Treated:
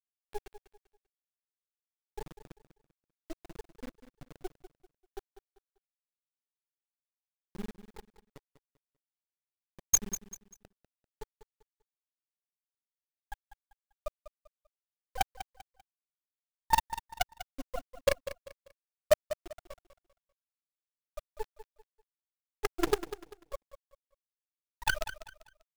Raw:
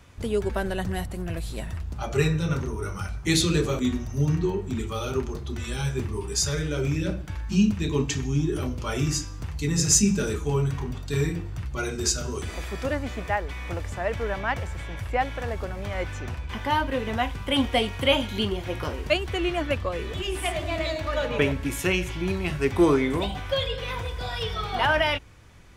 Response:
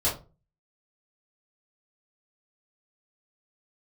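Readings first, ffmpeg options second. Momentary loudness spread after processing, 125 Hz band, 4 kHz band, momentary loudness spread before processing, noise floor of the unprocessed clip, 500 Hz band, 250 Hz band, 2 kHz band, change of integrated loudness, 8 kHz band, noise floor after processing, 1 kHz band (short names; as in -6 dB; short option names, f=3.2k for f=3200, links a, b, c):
22 LU, -27.5 dB, -16.5 dB, 10 LU, -36 dBFS, -11.5 dB, -22.0 dB, -13.0 dB, -8.0 dB, -8.0 dB, under -85 dBFS, -8.5 dB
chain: -filter_complex "[0:a]afftfilt=real='re*gte(hypot(re,im),0.794)':imag='im*gte(hypot(re,im),0.794)':win_size=1024:overlap=0.75,highpass=800,highshelf=f=2.3k:g=7.5,acrossover=split=5800[a][b];[a]volume=24dB,asoftclip=hard,volume=-24dB[c];[c][b]amix=inputs=2:normalize=0,tremolo=f=21:d=0.947,acrusher=bits=6:dc=4:mix=0:aa=0.000001,aphaser=in_gain=1:out_gain=1:delay=2.1:decay=0.22:speed=0.78:type=sinusoidal,aecho=1:1:196|392|588:0.224|0.0694|0.0215,volume=8.5dB"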